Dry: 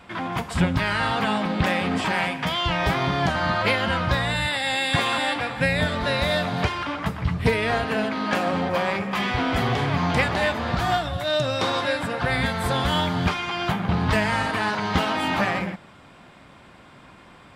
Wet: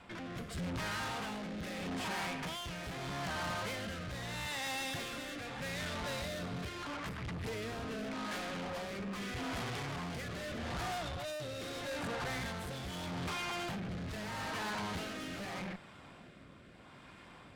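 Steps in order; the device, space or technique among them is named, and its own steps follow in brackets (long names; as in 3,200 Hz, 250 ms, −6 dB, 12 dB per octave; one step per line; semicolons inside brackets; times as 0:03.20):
overdriven rotary cabinet (tube saturation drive 34 dB, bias 0.55; rotating-speaker cabinet horn 0.8 Hz)
level −2 dB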